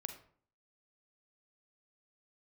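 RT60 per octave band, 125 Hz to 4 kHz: 0.60, 0.60, 0.55, 0.50, 0.40, 0.35 s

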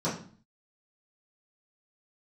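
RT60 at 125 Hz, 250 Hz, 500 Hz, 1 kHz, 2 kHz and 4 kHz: 0.60, 0.60, 0.45, 0.45, 0.40, 0.40 s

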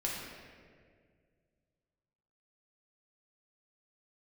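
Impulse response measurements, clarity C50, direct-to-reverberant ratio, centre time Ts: 0.0 dB, -4.5 dB, 97 ms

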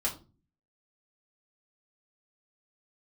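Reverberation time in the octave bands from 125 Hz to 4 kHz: 0.65, 0.60, 0.40, 0.30, 0.25, 0.25 s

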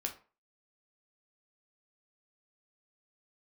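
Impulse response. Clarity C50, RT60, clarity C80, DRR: 11.5 dB, 0.35 s, 18.0 dB, 3.0 dB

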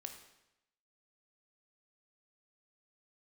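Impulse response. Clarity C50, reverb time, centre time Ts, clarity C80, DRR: 7.5 dB, 0.90 s, 20 ms, 10.0 dB, 5.0 dB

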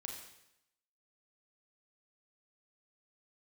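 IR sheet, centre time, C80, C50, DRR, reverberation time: 40 ms, 6.5 dB, 4.0 dB, 0.5 dB, 0.85 s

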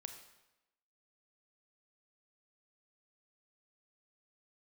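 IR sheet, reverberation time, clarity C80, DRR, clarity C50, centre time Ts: 0.95 s, 10.0 dB, 6.0 dB, 7.5 dB, 20 ms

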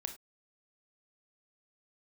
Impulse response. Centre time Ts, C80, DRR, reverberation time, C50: 10 ms, 18.0 dB, 6.0 dB, not exponential, 11.5 dB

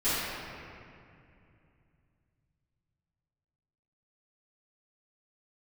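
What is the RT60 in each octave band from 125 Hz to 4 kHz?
4.3, 3.4, 2.7, 2.4, 2.4, 1.6 s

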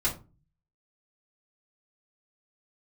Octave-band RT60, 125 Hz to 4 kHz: 0.75, 0.50, 0.35, 0.30, 0.25, 0.20 s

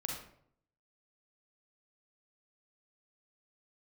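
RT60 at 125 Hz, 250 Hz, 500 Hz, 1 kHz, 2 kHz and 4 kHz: 0.85, 0.75, 0.70, 0.60, 0.50, 0.40 s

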